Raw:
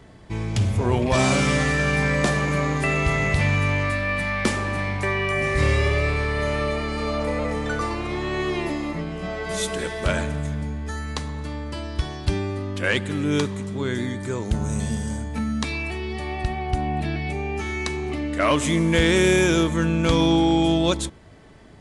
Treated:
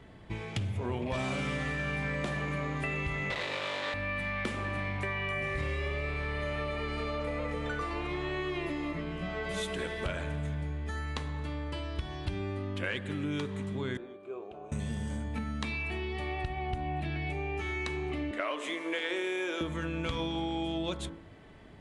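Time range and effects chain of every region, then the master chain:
0:03.30–0:03.94: each half-wave held at its own peak + loudspeaker in its box 400–7,300 Hz, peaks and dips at 520 Hz +7 dB, 1,000 Hz +6 dB, 1,900 Hz +5 dB, 3,800 Hz +9 dB, 6,000 Hz −4 dB + saturating transformer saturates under 2,200 Hz
0:13.97–0:14.72: formant filter a + parametric band 380 Hz +14.5 dB 0.59 octaves
0:18.31–0:19.61: high-pass filter 340 Hz 24 dB per octave + high-shelf EQ 5,200 Hz −5.5 dB
whole clip: high shelf with overshoot 4,100 Hz −6 dB, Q 1.5; hum removal 55.26 Hz, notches 33; downward compressor, threshold −26 dBFS; level −4.5 dB

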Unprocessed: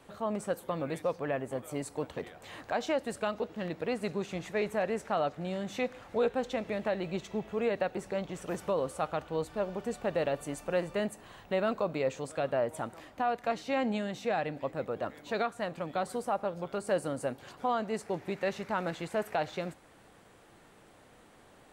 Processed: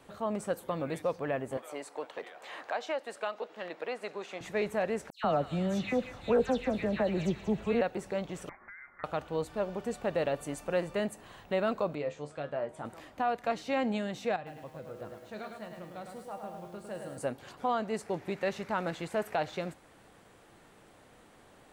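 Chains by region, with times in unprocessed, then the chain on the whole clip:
0:01.57–0:04.41: high-pass filter 530 Hz + high-shelf EQ 6,400 Hz −10.5 dB + multiband upward and downward compressor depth 40%
0:05.10–0:07.81: low-shelf EQ 240 Hz +10 dB + all-pass dispersion lows, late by 141 ms, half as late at 2,700 Hz + delay with a high-pass on its return 185 ms, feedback 49%, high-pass 1,600 Hz, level −9 dB
0:08.49–0:09.04: high-pass filter 1,200 Hz + downward compressor 4 to 1, threshold −45 dBFS + voice inversion scrambler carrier 2,600 Hz
0:11.95–0:12.85: high-frequency loss of the air 60 metres + tuned comb filter 74 Hz, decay 0.19 s, mix 80%
0:14.36–0:17.18: parametric band 120 Hz +8.5 dB 1.3 octaves + tuned comb filter 71 Hz, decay 0.86 s, harmonics odd, mix 80% + feedback echo at a low word length 105 ms, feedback 55%, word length 10 bits, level −5 dB
whole clip: no processing

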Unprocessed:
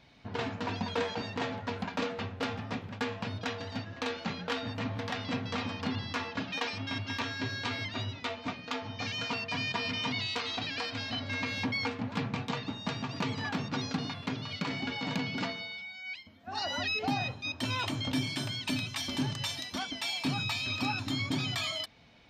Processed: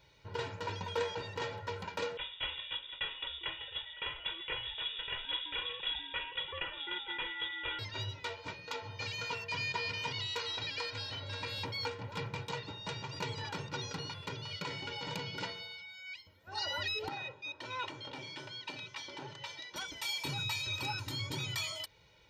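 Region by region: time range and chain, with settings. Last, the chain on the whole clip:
0:02.17–0:07.79: low-shelf EQ 150 Hz −8 dB + voice inversion scrambler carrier 3,600 Hz
0:17.08–0:19.76: high-pass filter 240 Hz + high-frequency loss of the air 190 metres + saturating transformer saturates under 700 Hz
whole clip: high-shelf EQ 9,500 Hz +12 dB; comb filter 2.1 ms, depth 95%; level −7 dB

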